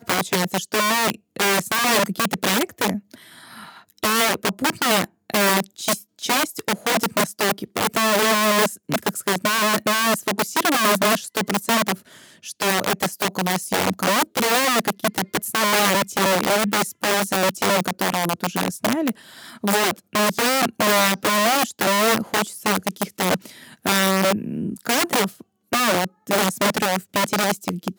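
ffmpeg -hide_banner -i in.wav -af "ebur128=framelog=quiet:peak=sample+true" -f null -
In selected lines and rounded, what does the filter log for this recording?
Integrated loudness:
  I:         -20.4 LUFS
  Threshold: -30.6 LUFS
Loudness range:
  LRA:         2.6 LU
  Threshold: -40.6 LUFS
  LRA low:   -21.9 LUFS
  LRA high:  -19.3 LUFS
Sample peak:
  Peak:       -7.3 dBFS
True peak:
  Peak:       -5.2 dBFS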